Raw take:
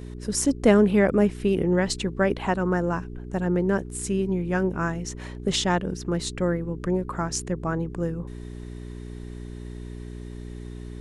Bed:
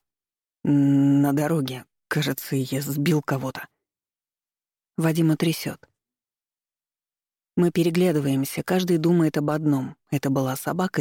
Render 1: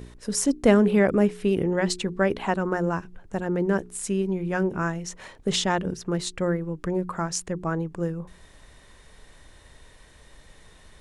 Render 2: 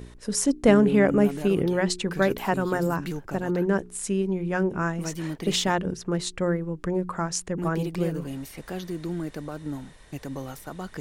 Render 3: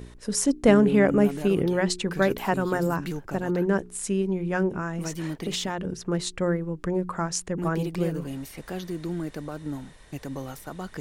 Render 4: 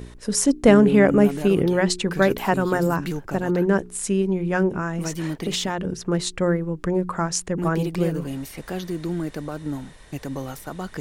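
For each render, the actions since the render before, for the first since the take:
hum removal 60 Hz, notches 7
mix in bed −12 dB
0:04.72–0:06.02: downward compressor, threshold −25 dBFS
level +4 dB; brickwall limiter −1 dBFS, peak gain reduction 1 dB

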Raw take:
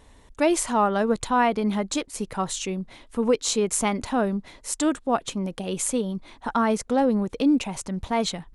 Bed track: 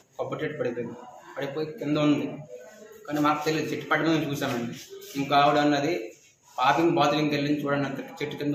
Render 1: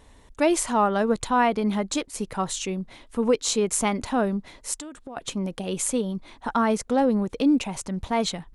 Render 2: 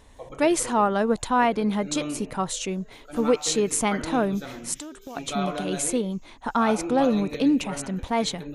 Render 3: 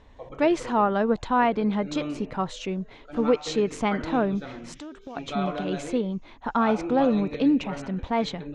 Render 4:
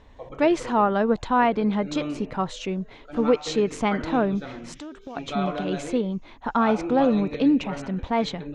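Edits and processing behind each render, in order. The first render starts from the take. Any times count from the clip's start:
0:04.74–0:05.17: downward compressor 20 to 1, threshold −34 dBFS
mix in bed track −10 dB
high-frequency loss of the air 180 metres
level +1.5 dB

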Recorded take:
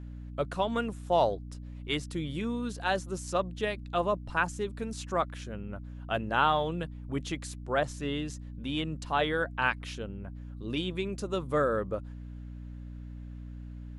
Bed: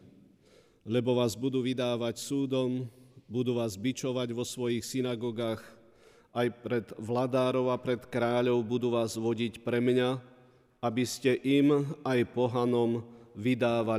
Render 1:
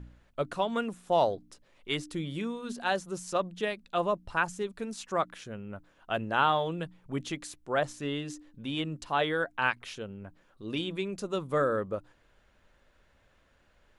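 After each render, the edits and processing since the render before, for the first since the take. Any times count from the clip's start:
hum removal 60 Hz, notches 5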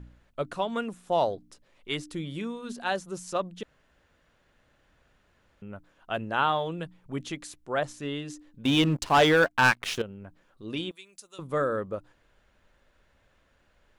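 0:03.63–0:05.62: fill with room tone
0:08.65–0:10.02: leveller curve on the samples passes 3
0:10.91–0:11.39: first-order pre-emphasis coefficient 0.97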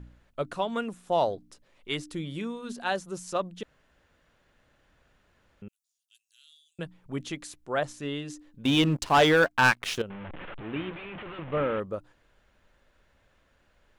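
0:05.68–0:06.79: inverse Chebyshev high-pass filter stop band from 960 Hz, stop band 80 dB
0:10.10–0:11.80: linear delta modulator 16 kbit/s, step −34 dBFS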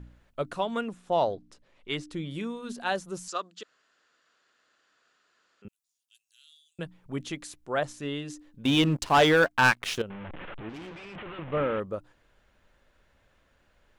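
0:00.81–0:02.31: high-frequency loss of the air 51 metres
0:03.28–0:05.65: loudspeaker in its box 490–7,800 Hz, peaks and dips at 570 Hz −8 dB, 860 Hz −8 dB, 1,300 Hz +4 dB, 2,200 Hz −4 dB, 4,600 Hz +7 dB, 7,300 Hz +7 dB
0:10.69–0:11.16: tube saturation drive 39 dB, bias 0.5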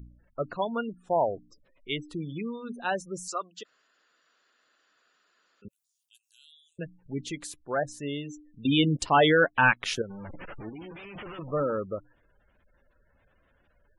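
gate on every frequency bin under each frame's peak −20 dB strong
high-shelf EQ 6,700 Hz +6 dB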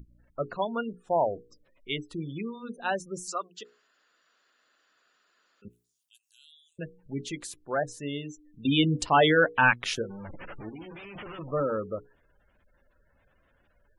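mains-hum notches 60/120/180/240/300/360/420/480 Hz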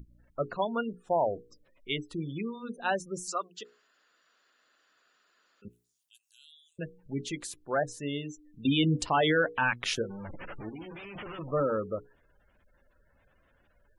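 brickwall limiter −17.5 dBFS, peak gain reduction 7.5 dB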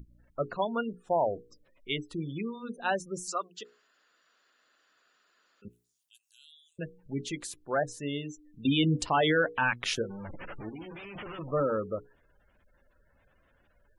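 no processing that can be heard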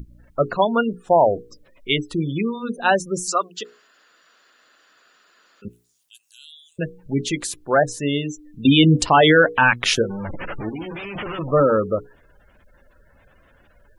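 level +12 dB

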